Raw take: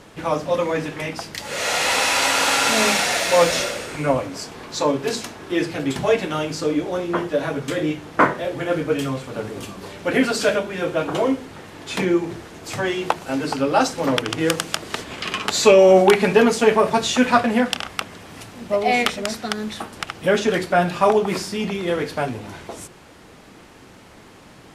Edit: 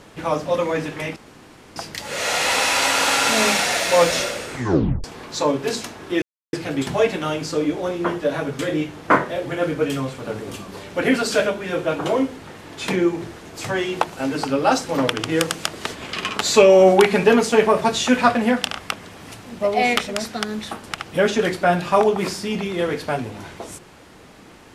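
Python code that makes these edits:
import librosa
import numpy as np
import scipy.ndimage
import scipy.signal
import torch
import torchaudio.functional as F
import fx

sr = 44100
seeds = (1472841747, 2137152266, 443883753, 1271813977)

y = fx.edit(x, sr, fx.insert_room_tone(at_s=1.16, length_s=0.6),
    fx.tape_stop(start_s=3.93, length_s=0.51),
    fx.insert_silence(at_s=5.62, length_s=0.31), tone=tone)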